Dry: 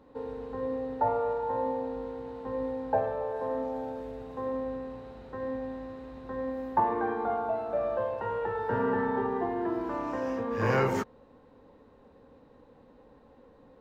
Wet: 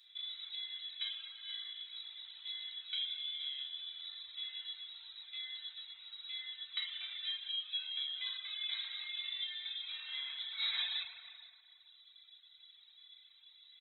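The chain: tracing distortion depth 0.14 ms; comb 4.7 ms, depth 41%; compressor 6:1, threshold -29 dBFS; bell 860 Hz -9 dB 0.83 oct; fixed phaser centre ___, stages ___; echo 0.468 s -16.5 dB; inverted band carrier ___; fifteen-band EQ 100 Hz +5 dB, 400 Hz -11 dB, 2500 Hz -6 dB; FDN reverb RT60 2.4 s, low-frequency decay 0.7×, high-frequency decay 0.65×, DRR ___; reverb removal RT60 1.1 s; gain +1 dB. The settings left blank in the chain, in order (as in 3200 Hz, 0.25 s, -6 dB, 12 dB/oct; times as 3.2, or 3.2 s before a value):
1000 Hz, 6, 3900 Hz, -4 dB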